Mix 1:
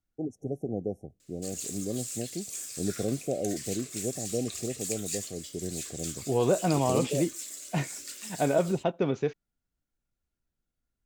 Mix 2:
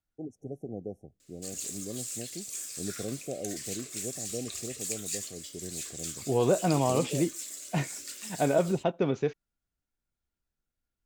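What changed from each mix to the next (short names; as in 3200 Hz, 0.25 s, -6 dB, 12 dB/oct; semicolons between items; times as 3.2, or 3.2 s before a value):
first voice -6.0 dB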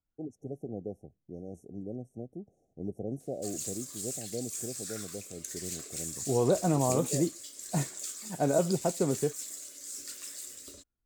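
second voice: add air absorption 490 m; background: entry +2.00 s; master: add bell 2700 Hz -5.5 dB 1.1 oct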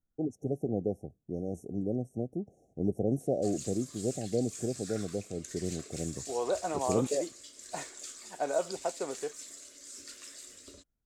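first voice +7.0 dB; second voice: add HPF 580 Hz 12 dB/oct; background: add air absorption 62 m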